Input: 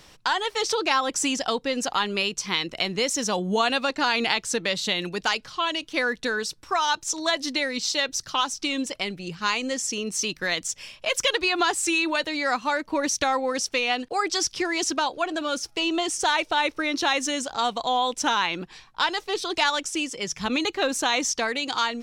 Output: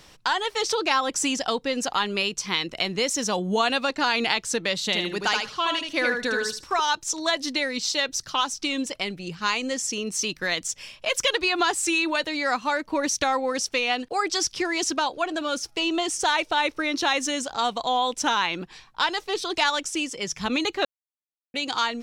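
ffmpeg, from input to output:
-filter_complex "[0:a]asettb=1/sr,asplit=3[s0][s1][s2];[s0]atrim=end=4.854[s3];[s1]atrim=start=4.85:end=6.8,asetpts=PTS-STARTPTS,afade=t=in:d=0.004:c=qsin,afade=t=out:st=1.946:d=0.004:c=qsin,aecho=1:1:77|154|231:0.631|0.101|0.0162,atrim=end_sample=85995[s4];[s2]atrim=start=6.796[s5];[s3][s4]acrossfade=d=0.004:c1=hsin:c2=qsin[s6];[s6][s5]acrossfade=d=0.004:c1=qsin:c2=hsin,asplit=3[s7][s8][s9];[s7]atrim=end=20.85,asetpts=PTS-STARTPTS,afade=t=out:st=20.846:d=0.004:c=hsin[s10];[s8]atrim=start=20.85:end=21.54,asetpts=PTS-STARTPTS,volume=0[s11];[s9]atrim=start=21.54,asetpts=PTS-STARTPTS,afade=t=in:d=0.004:c=hsin[s12];[s10][s11][s12]concat=n=3:v=0:a=1"

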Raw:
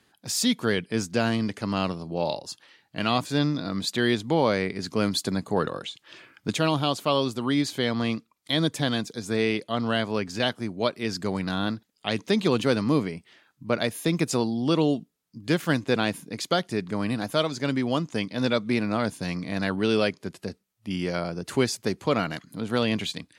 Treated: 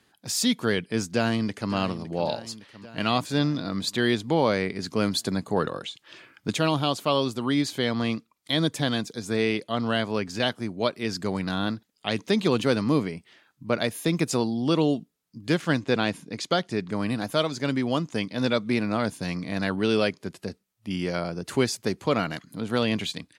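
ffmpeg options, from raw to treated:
-filter_complex "[0:a]asplit=2[s0][s1];[s1]afade=t=in:st=1.09:d=0.01,afade=t=out:st=1.73:d=0.01,aecho=0:1:560|1120|1680|2240|2800|3360|3920:0.199526|0.129692|0.0842998|0.0547949|0.0356167|0.0231508|0.015048[s2];[s0][s2]amix=inputs=2:normalize=0,asettb=1/sr,asplit=3[s3][s4][s5];[s3]atrim=end=15.574[s6];[s4]atrim=start=15.57:end=16.91,asetpts=PTS-STARTPTS,afade=t=in:d=0.004:c=qsin,afade=t=out:st=1.336:d=0.004:c=qsin,lowpass=7900[s7];[s5]atrim=start=16.906[s8];[s6][s7]acrossfade=d=0.004:c1=hsin:c2=qsin[s9];[s9][s8]acrossfade=d=0.004:c1=qsin:c2=hsin"

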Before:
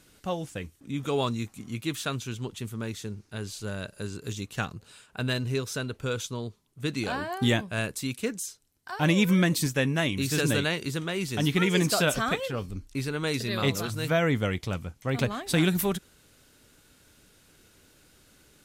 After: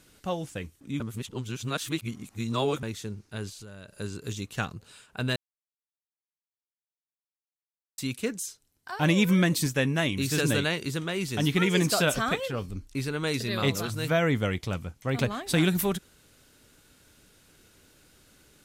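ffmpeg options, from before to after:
-filter_complex "[0:a]asettb=1/sr,asplit=3[s0][s1][s2];[s0]atrim=end=3.494[s3];[s1]atrim=start=3.49:end=3.99,asetpts=PTS-STARTPTS,afade=t=in:d=0.004:c=qsin,afade=t=out:st=0.496:d=0.004:c=qsin,acompressor=threshold=0.00891:ratio=8:attack=3.2:release=140:knee=1:detection=peak[s4];[s2]atrim=start=3.986[s5];[s3][s4]acrossfade=d=0.004:c1=hsin:c2=qsin[s6];[s6][s5]acrossfade=d=0.004:c1=qsin:c2=hsin,asplit=5[s7][s8][s9][s10][s11];[s7]atrim=end=1.002[s12];[s8]atrim=start=0.998:end=2.832,asetpts=PTS-STARTPTS,areverse[s13];[s9]atrim=start=2.828:end=5.36,asetpts=PTS-STARTPTS,afade=t=out:st=2.528:d=0.004:c=hsin[s14];[s10]atrim=start=5.36:end=7.98,asetpts=PTS-STARTPTS,volume=0[s15];[s11]atrim=start=7.98,asetpts=PTS-STARTPTS,afade=t=in:d=0.004:c=hsin[s16];[s12][s13]acrossfade=d=0.004:c1=hsin:c2=hsin[s17];[s14][s15][s16]concat=n=3:v=0:a=1[s18];[s17][s18]acrossfade=d=0.004:c1=hsin:c2=hsin"

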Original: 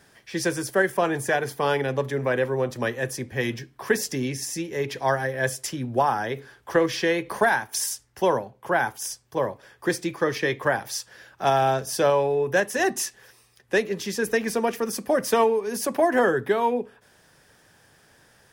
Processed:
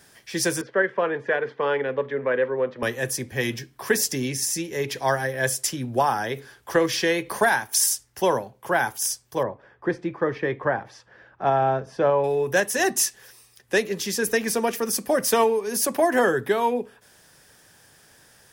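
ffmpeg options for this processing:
-filter_complex "[0:a]asettb=1/sr,asplit=3[s0][s1][s2];[s0]atrim=end=0.614[s3];[s1]atrim=start=0.61:end=2.83,asetpts=PTS-STARTPTS,afade=t=in:d=0.004:c=qsin,afade=t=out:st=2.216:d=0.004:c=qsin,highpass=240,equalizer=f=330:t=q:w=4:g=-5,equalizer=f=480:t=q:w=4:g=5,equalizer=f=750:t=q:w=4:g=-8,equalizer=f=2500:t=q:w=4:g=-4,lowpass=f=2700:w=0.5412,lowpass=f=2700:w=1.3066[s4];[s2]atrim=start=2.826[s5];[s3][s4]acrossfade=d=0.004:c1=hsin:c2=qsin[s6];[s6][s5]acrossfade=d=0.004:c1=qsin:c2=hsin,asettb=1/sr,asplit=3[s7][s8][s9];[s7]atrim=end=9.434[s10];[s8]atrim=start=9.43:end=12.24,asetpts=PTS-STARTPTS,afade=t=in:d=0.004:c=qsin,afade=t=out:st=2.806:d=0.004:c=qsin,lowpass=1500[s11];[s9]atrim=start=12.236[s12];[s10][s11]acrossfade=d=0.004:c1=hsin:c2=qsin[s13];[s13][s12]acrossfade=d=0.004:c1=qsin:c2=hsin,highshelf=f=4300:g=8.5"

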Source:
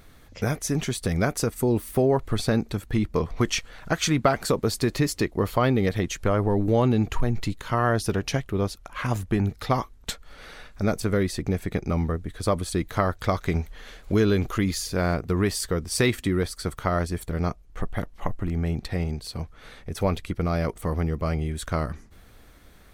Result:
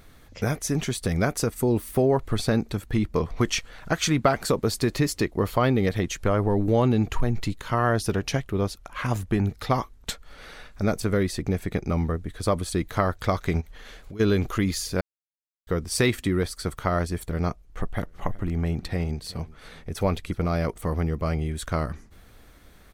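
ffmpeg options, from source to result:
-filter_complex "[0:a]asplit=3[s0][s1][s2];[s0]afade=t=out:st=13.6:d=0.02[s3];[s1]acompressor=threshold=0.0126:ratio=5:attack=3.2:release=140:knee=1:detection=peak,afade=t=in:st=13.6:d=0.02,afade=t=out:st=14.19:d=0.02[s4];[s2]afade=t=in:st=14.19:d=0.02[s5];[s3][s4][s5]amix=inputs=3:normalize=0,asplit=3[s6][s7][s8];[s6]afade=t=out:st=17.99:d=0.02[s9];[s7]aecho=1:1:371|742:0.0891|0.0232,afade=t=in:st=17.99:d=0.02,afade=t=out:st=20.53:d=0.02[s10];[s8]afade=t=in:st=20.53:d=0.02[s11];[s9][s10][s11]amix=inputs=3:normalize=0,asplit=3[s12][s13][s14];[s12]atrim=end=15.01,asetpts=PTS-STARTPTS,afade=t=out:st=15.006:d=0.004:c=hsin[s15];[s13]atrim=start=15.01:end=15.67,asetpts=PTS-STARTPTS,volume=0[s16];[s14]atrim=start=15.67,asetpts=PTS-STARTPTS,afade=t=in:d=0.004:c=hsin[s17];[s15][s16][s17]concat=n=3:v=0:a=1"

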